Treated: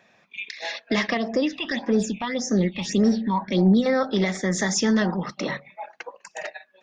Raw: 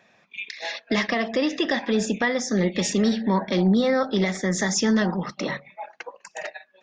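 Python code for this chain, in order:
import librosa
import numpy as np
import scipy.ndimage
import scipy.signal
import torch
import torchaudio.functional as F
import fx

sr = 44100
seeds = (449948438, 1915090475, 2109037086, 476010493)

y = fx.phaser_stages(x, sr, stages=6, low_hz=420.0, high_hz=3600.0, hz=1.7, feedback_pct=40, at=(1.17, 3.86))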